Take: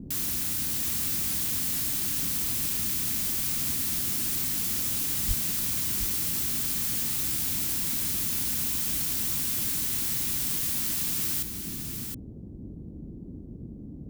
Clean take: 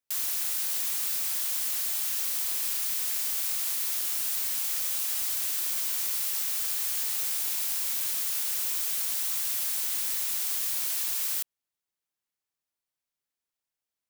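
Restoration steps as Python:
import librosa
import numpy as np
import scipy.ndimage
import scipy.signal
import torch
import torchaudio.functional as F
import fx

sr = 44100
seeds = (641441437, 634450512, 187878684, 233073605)

y = fx.highpass(x, sr, hz=140.0, slope=24, at=(5.27, 5.39), fade=0.02)
y = fx.noise_reduce(y, sr, print_start_s=13.11, print_end_s=13.61, reduce_db=30.0)
y = fx.fix_echo_inverse(y, sr, delay_ms=719, level_db=-7.0)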